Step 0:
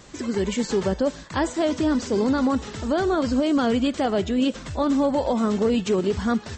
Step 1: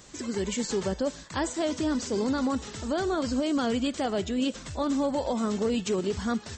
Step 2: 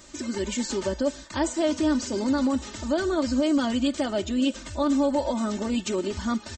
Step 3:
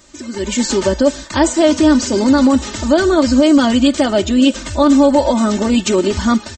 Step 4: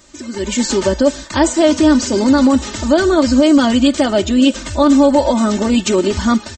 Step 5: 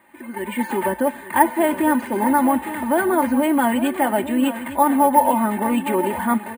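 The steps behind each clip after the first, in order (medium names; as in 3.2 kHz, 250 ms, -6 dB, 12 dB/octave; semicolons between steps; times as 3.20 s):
treble shelf 5.2 kHz +10.5 dB; trim -6 dB
comb 3.3 ms, depth 75%
level rider gain up to 12.5 dB; trim +1.5 dB
no audible change
cabinet simulation 270–2200 Hz, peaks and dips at 290 Hz -7 dB, 420 Hz -7 dB, 600 Hz -9 dB, 860 Hz +8 dB, 1.3 kHz -9 dB, 1.9 kHz +4 dB; delay 859 ms -12.5 dB; careless resampling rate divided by 4×, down filtered, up hold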